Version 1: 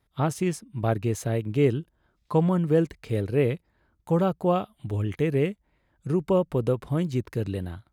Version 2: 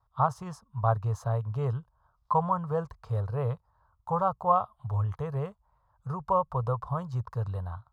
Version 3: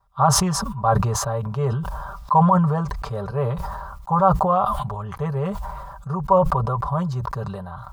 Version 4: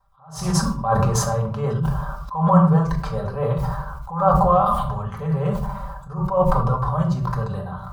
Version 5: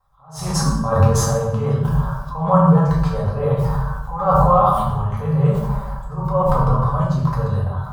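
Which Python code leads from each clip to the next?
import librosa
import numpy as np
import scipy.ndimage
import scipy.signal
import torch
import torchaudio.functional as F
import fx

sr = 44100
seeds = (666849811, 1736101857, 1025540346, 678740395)

y1 = fx.curve_eq(x, sr, hz=(120.0, 320.0, 460.0, 1100.0, 2200.0, 5100.0, 8700.0), db=(0, -29, -9, 11, -22, -9, -17))
y2 = y1 + 0.8 * np.pad(y1, (int(5.1 * sr / 1000.0), 0))[:len(y1)]
y2 = fx.sustainer(y2, sr, db_per_s=31.0)
y2 = y2 * 10.0 ** (5.5 / 20.0)
y3 = fx.room_shoebox(y2, sr, seeds[0], volume_m3=700.0, walls='furnished', distance_m=2.1)
y3 = fx.attack_slew(y3, sr, db_per_s=110.0)
y3 = y3 * 10.0 ** (-1.0 / 20.0)
y4 = fx.rev_fdn(y3, sr, rt60_s=0.82, lf_ratio=1.45, hf_ratio=0.8, size_ms=64.0, drr_db=-1.5)
y4 = y4 * 10.0 ** (-1.0 / 20.0)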